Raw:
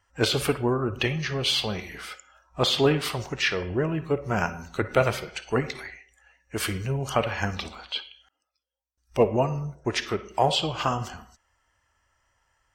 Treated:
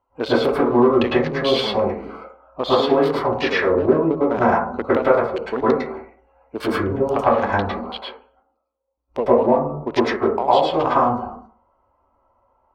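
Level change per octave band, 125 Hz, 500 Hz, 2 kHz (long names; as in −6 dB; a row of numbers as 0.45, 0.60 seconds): −1.5, +9.5, +3.5 decibels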